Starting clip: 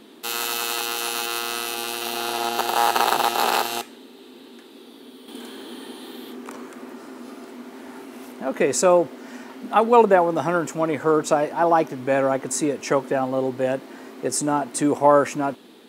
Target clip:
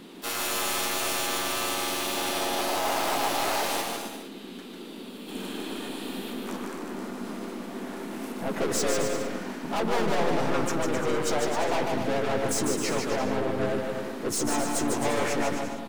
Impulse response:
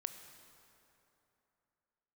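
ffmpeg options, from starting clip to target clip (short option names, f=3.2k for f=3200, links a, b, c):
-filter_complex "[0:a]aeval=exprs='(tanh(25.1*val(0)+0.25)-tanh(0.25))/25.1':c=same,asplit=3[a][b][c];[b]asetrate=35002,aresample=44100,atempo=1.25992,volume=-3dB[d];[c]asetrate=55563,aresample=44100,atempo=0.793701,volume=-11dB[e];[a][d][e]amix=inputs=3:normalize=0,aecho=1:1:150|262.5|346.9|410.2|457.6:0.631|0.398|0.251|0.158|0.1"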